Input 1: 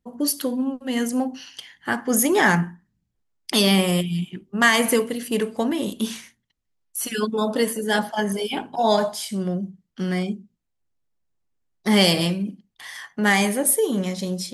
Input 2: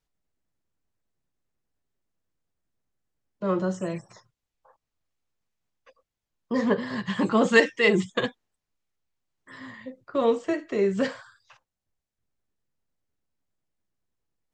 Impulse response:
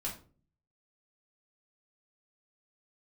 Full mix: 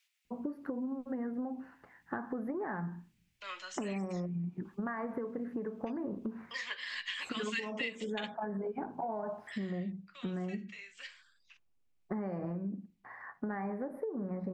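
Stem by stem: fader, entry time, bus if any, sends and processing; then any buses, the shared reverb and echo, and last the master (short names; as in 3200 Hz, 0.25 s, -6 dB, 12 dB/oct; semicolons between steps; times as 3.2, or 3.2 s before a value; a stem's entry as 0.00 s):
-3.0 dB, 0.25 s, send -22.5 dB, inverse Chebyshev low-pass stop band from 3000 Hz, stop band 40 dB; compressor, threshold -26 dBFS, peak gain reduction 11.5 dB
9.43 s -3.5 dB -> 10.03 s -14 dB, 0.00 s, no send, resonant high-pass 2400 Hz, resonance Q 2.7; three-band squash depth 40%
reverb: on, RT60 0.40 s, pre-delay 3 ms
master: compressor 6:1, threshold -34 dBFS, peak gain reduction 12.5 dB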